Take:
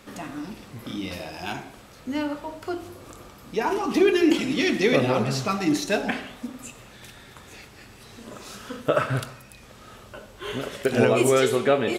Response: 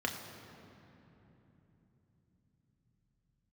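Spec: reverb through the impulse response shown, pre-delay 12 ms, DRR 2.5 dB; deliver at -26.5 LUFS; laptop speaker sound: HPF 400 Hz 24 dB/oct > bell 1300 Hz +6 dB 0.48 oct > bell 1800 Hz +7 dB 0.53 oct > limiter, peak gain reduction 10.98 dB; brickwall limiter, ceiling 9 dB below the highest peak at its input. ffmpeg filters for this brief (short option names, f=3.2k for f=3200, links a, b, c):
-filter_complex "[0:a]alimiter=limit=-15dB:level=0:latency=1,asplit=2[a][b];[1:a]atrim=start_sample=2205,adelay=12[c];[b][c]afir=irnorm=-1:irlink=0,volume=-8dB[d];[a][d]amix=inputs=2:normalize=0,highpass=f=400:w=0.5412,highpass=f=400:w=1.3066,equalizer=f=1.3k:t=o:w=0.48:g=6,equalizer=f=1.8k:t=o:w=0.53:g=7,volume=3dB,alimiter=limit=-15dB:level=0:latency=1"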